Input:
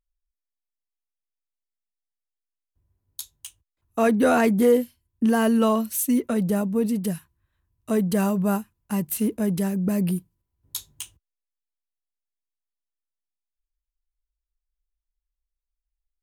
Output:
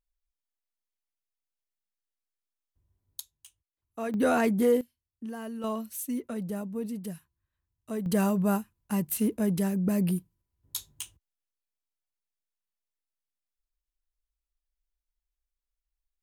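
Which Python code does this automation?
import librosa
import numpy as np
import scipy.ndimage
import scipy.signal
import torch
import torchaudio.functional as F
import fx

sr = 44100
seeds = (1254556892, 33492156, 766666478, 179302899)

y = fx.gain(x, sr, db=fx.steps((0.0, -3.0), (3.2, -13.5), (4.14, -5.5), (4.81, -18.0), (5.64, -11.0), (8.06, -3.0)))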